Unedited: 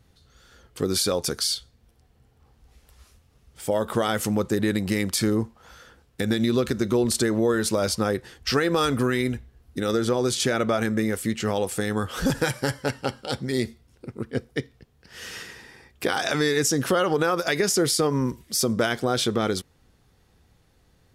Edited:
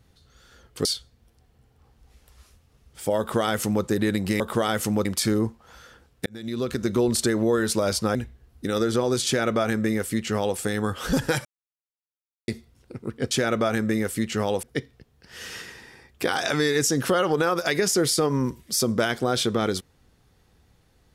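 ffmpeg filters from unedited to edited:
-filter_complex "[0:a]asplit=10[s0][s1][s2][s3][s4][s5][s6][s7][s8][s9];[s0]atrim=end=0.852[s10];[s1]atrim=start=1.458:end=5.012[s11];[s2]atrim=start=3.798:end=4.452[s12];[s3]atrim=start=5.008:end=6.22,asetpts=PTS-STARTPTS,afade=t=out:st=1.208:d=0.004:c=hsin[s13];[s4]atrim=start=6.22:end=8.112,asetpts=PTS-STARTPTS,afade=t=in:d=0.64[s14];[s5]atrim=start=9.278:end=12.58,asetpts=PTS-STARTPTS,afade=t=out:st=3.298:d=0.004:c=hsin[s15];[s6]atrim=start=12.58:end=13.61,asetpts=PTS-STARTPTS,volume=0[s16];[s7]atrim=start=13.61:end=14.442,asetpts=PTS-STARTPTS,afade=t=in:d=0.004:c=hsin[s17];[s8]atrim=start=10.388:end=11.712[s18];[s9]atrim=start=14.438[s19];[s10][s11]acrossfade=d=0.004:c1=hsin:c2=hsin[s20];[s20][s12]acrossfade=d=0.004:c1=hsin:c2=hsin[s21];[s13][s14]concat=n=2:v=0:a=1[s22];[s21][s22]acrossfade=d=0.004:c1=hsin:c2=hsin[s23];[s15][s16][s17]concat=n=3:v=0:a=1[s24];[s23][s24]acrossfade=d=0.004:c1=hsin:c2=hsin[s25];[s25][s18]acrossfade=d=0.004:c1=hsin:c2=hsin[s26];[s26][s19]acrossfade=d=0.004:c1=hsin:c2=hsin"

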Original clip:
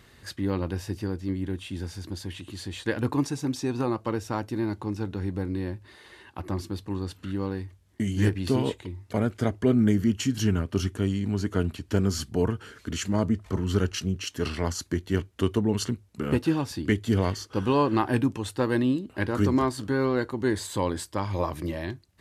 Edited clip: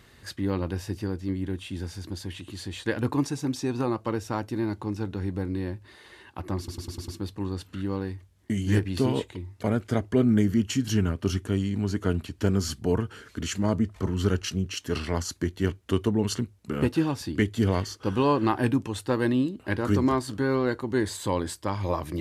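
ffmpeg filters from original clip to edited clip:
-filter_complex "[0:a]asplit=6[s0][s1][s2][s3][s4][s5];[s0]atrim=end=6.682[s6];[s1]atrim=start=6.578:end=6.682[s7];[s2]atrim=start=6.578:end=6.682[s8];[s3]atrim=start=6.578:end=6.682[s9];[s4]atrim=start=6.578:end=6.682[s10];[s5]atrim=start=6.578[s11];[s6][s7]acrossfade=d=0.004:c1=hsin:c2=hsin[s12];[s12][s8]acrossfade=d=0.004:c1=hsin:c2=hsin[s13];[s13][s9]acrossfade=d=0.004:c1=hsin:c2=hsin[s14];[s14][s10]acrossfade=d=0.004:c1=hsin:c2=hsin[s15];[s15][s11]acrossfade=d=0.004:c1=hsin:c2=hsin"

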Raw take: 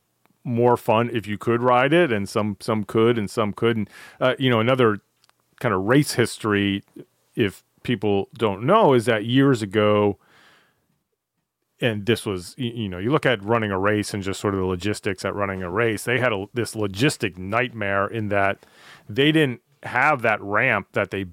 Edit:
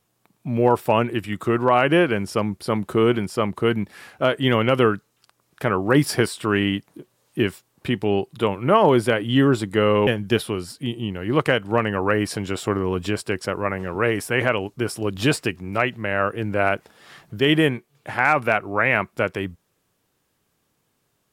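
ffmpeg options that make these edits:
-filter_complex "[0:a]asplit=2[s0][s1];[s0]atrim=end=10.072[s2];[s1]atrim=start=11.838[s3];[s2][s3]acrossfade=d=0.004:c1=hsin:c2=hsin"

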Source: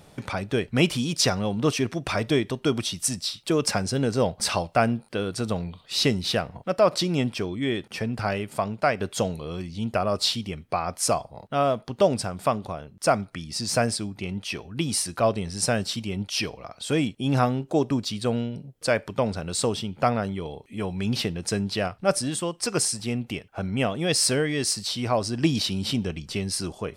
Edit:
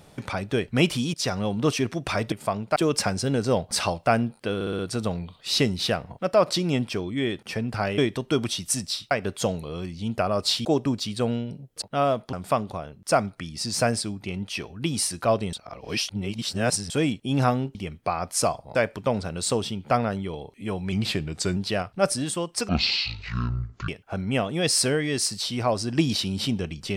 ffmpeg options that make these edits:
-filter_complex "[0:a]asplit=21[s0][s1][s2][s3][s4][s5][s6][s7][s8][s9][s10][s11][s12][s13][s14][s15][s16][s17][s18][s19][s20];[s0]atrim=end=1.14,asetpts=PTS-STARTPTS,afade=t=out:st=1.136:d=0.004:c=hsin:silence=0.251189[s21];[s1]atrim=start=1.14:end=2.322,asetpts=PTS-STARTPTS,afade=t=in:d=0.28:silence=0.251189[s22];[s2]atrim=start=8.428:end=8.872[s23];[s3]atrim=start=3.448:end=5.302[s24];[s4]atrim=start=5.238:end=5.302[s25];[s5]atrim=start=5.238:end=5.302[s26];[s6]atrim=start=5.238:end=5.302[s27];[s7]atrim=start=5.238:end=8.432[s28];[s8]atrim=start=2.318:end=3.452[s29];[s9]atrim=start=8.868:end=10.412[s30];[s10]atrim=start=17.698:end=18.872[s31];[s11]atrim=start=11.408:end=11.922[s32];[s12]atrim=start=12.278:end=15.482[s33];[s13]atrim=start=15.478:end=16.852,asetpts=PTS-STARTPTS,areverse[s34];[s14]atrim=start=16.848:end=17.702[s35];[s15]atrim=start=10.408:end=11.412[s36];[s16]atrim=start=18.868:end=21.044[s37];[s17]atrim=start=21.04:end=21.62,asetpts=PTS-STARTPTS,asetrate=39690,aresample=44100[s38];[s18]atrim=start=21.616:end=22.744[s39];[s19]atrim=start=22.74:end=23.34,asetpts=PTS-STARTPTS,asetrate=22050,aresample=44100[s40];[s20]atrim=start=23.336[s41];[s21][s22]concat=n=2:v=0:a=1[s42];[s42][s23]acrossfade=d=0.004:c1=hsin:c2=hsin[s43];[s43][s24]acrossfade=d=0.004:c1=hsin:c2=hsin[s44];[s44][s25]acrossfade=d=0.004:c1=hsin:c2=hsin[s45];[s45][s26]acrossfade=d=0.004:c1=hsin:c2=hsin[s46];[s46][s27]acrossfade=d=0.004:c1=hsin:c2=hsin[s47];[s47][s28]acrossfade=d=0.004:c1=hsin:c2=hsin[s48];[s48][s29]acrossfade=d=0.004:c1=hsin:c2=hsin[s49];[s49][s30]acrossfade=d=0.004:c1=hsin:c2=hsin[s50];[s50][s31]acrossfade=d=0.004:c1=hsin:c2=hsin[s51];[s51][s32]acrossfade=d=0.004:c1=hsin:c2=hsin[s52];[s52][s33]acrossfade=d=0.004:c1=hsin:c2=hsin[s53];[s53][s34]acrossfade=d=0.004:c1=hsin:c2=hsin[s54];[s54][s35]acrossfade=d=0.004:c1=hsin:c2=hsin[s55];[s55][s36]acrossfade=d=0.004:c1=hsin:c2=hsin[s56];[s56][s37]acrossfade=d=0.004:c1=hsin:c2=hsin[s57];[s57][s38]acrossfade=d=0.004:c1=hsin:c2=hsin[s58];[s58][s39]acrossfade=d=0.004:c1=hsin:c2=hsin[s59];[s59][s40]acrossfade=d=0.004:c1=hsin:c2=hsin[s60];[s60][s41]acrossfade=d=0.004:c1=hsin:c2=hsin"

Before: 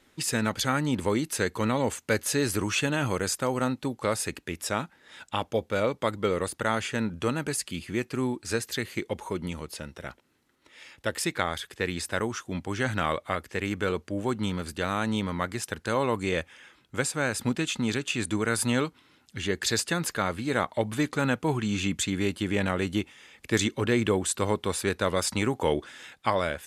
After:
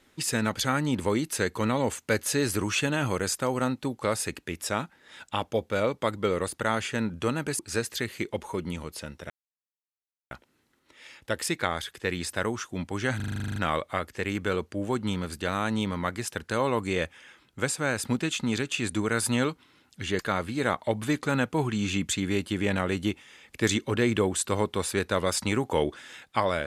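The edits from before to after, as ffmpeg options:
-filter_complex "[0:a]asplit=14[s0][s1][s2][s3][s4][s5][s6][s7][s8][s9][s10][s11][s12][s13];[s0]atrim=end=7.592[s14];[s1]atrim=start=8.358:end=10.07,asetpts=PTS-STARTPTS,afade=t=out:st=1.708:d=0.004:c=hsin,apad=pad_dur=1.01[s15];[s2]atrim=start=10.07:end=12.962,asetpts=PTS-STARTPTS,afade=t=in:d=0.004:c=hsin[s16];[s3]atrim=start=12.918:end=12.962[s17];[s4]atrim=start=12.918:end=12.962[s18];[s5]atrim=start=12.918:end=12.962[s19];[s6]atrim=start=12.918:end=12.962[s20];[s7]atrim=start=12.918:end=12.962[s21];[s8]atrim=start=12.918:end=12.962[s22];[s9]atrim=start=12.918:end=12.962[s23];[s10]atrim=start=12.918:end=12.962[s24];[s11]atrim=start=12.918:end=12.962[s25];[s12]atrim=start=12.918:end=19.552[s26];[s13]atrim=start=20.088[s27];[s15][s16]concat=n=2:v=0:a=1[s28];[s14][s28]acrossfade=d=0.004:c1=hsin:c2=hsin[s29];[s29][s17]acrossfade=d=0.004:c1=hsin:c2=hsin[s30];[s30][s18]acrossfade=d=0.004:c1=hsin:c2=hsin[s31];[s31][s19]acrossfade=d=0.004:c1=hsin:c2=hsin[s32];[s32][s20]acrossfade=d=0.004:c1=hsin:c2=hsin[s33];[s33][s21]acrossfade=d=0.004:c1=hsin:c2=hsin[s34];[s34][s22]acrossfade=d=0.004:c1=hsin:c2=hsin[s35];[s35][s23]acrossfade=d=0.004:c1=hsin:c2=hsin[s36];[s36][s24]acrossfade=d=0.004:c1=hsin:c2=hsin[s37];[s37][s25]acrossfade=d=0.004:c1=hsin:c2=hsin[s38];[s38][s26]acrossfade=d=0.004:c1=hsin:c2=hsin[s39];[s39][s27]acrossfade=d=0.004:c1=hsin:c2=hsin"

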